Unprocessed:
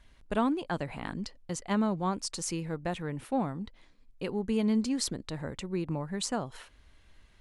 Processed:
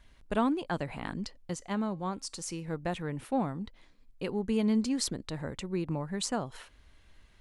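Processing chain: 1.54–2.68 resonator 270 Hz, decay 0.34 s, harmonics all, mix 40%

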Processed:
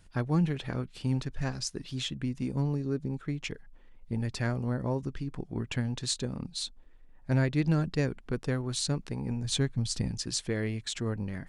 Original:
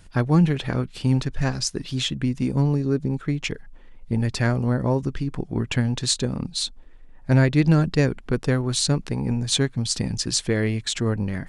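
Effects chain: 9.44–10.11 low shelf 120 Hz +10 dB; gain -9 dB

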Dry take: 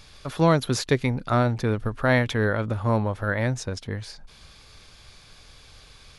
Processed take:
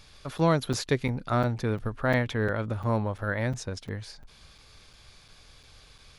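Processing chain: 1.95–2.56 high shelf 4200 Hz -5.5 dB; crackling interface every 0.35 s, samples 256, zero, from 0.38; gain -4 dB

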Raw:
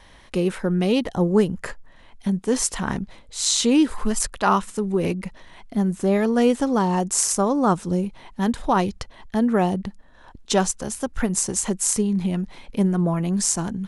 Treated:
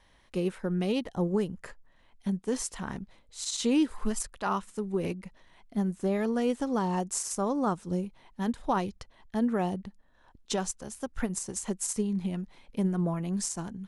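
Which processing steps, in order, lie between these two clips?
limiter -11.5 dBFS, peak gain reduction 9 dB; upward expander 1.5:1, over -31 dBFS; gain -5.5 dB

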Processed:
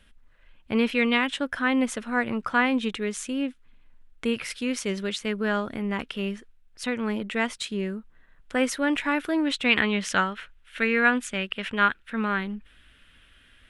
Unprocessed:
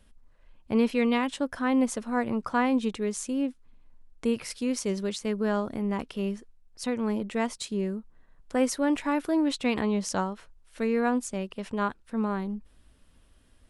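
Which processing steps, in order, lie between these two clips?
band shelf 2200 Hz +9 dB, from 9.69 s +15.5 dB

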